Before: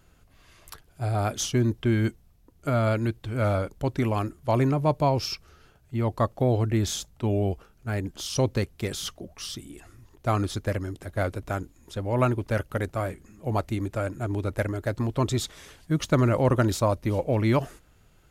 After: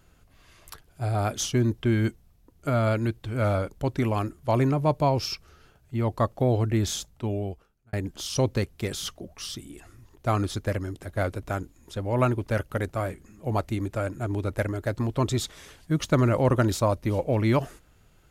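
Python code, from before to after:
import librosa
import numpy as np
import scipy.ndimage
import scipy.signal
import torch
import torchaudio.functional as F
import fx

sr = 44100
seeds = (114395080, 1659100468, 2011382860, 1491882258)

y = fx.edit(x, sr, fx.fade_out_span(start_s=6.98, length_s=0.95), tone=tone)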